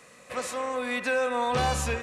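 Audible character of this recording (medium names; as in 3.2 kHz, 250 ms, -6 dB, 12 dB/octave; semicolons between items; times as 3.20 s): noise floor -53 dBFS; spectral tilt -4.0 dB/octave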